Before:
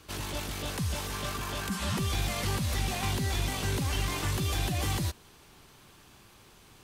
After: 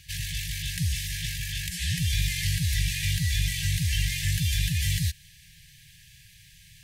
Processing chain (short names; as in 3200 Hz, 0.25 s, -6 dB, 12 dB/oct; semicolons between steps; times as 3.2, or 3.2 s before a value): FFT band-reject 180–1600 Hz; gain +5 dB